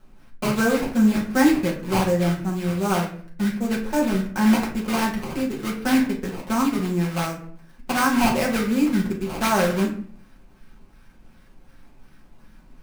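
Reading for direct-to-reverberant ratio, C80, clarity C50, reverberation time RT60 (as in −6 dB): −4.5 dB, 12.5 dB, 8.0 dB, 0.50 s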